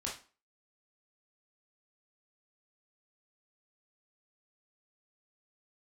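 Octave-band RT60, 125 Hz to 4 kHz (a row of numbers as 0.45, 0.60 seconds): 0.30, 0.40, 0.35, 0.35, 0.35, 0.30 seconds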